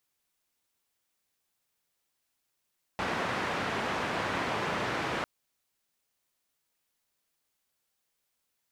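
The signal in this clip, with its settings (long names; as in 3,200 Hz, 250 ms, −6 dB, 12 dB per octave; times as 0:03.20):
band-limited noise 91–1,600 Hz, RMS −32 dBFS 2.25 s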